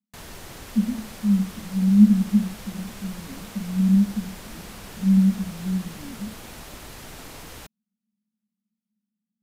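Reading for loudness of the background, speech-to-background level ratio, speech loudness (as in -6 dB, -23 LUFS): -40.5 LUFS, 19.0 dB, -21.5 LUFS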